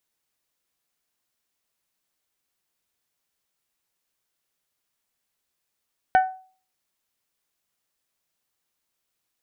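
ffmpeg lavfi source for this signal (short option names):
-f lavfi -i "aevalsrc='0.282*pow(10,-3*t/0.42)*sin(2*PI*752*t)+0.112*pow(10,-3*t/0.259)*sin(2*PI*1504*t)+0.0447*pow(10,-3*t/0.228)*sin(2*PI*1804.8*t)+0.0178*pow(10,-3*t/0.195)*sin(2*PI*2256*t)+0.00708*pow(10,-3*t/0.159)*sin(2*PI*3008*t)':d=0.89:s=44100"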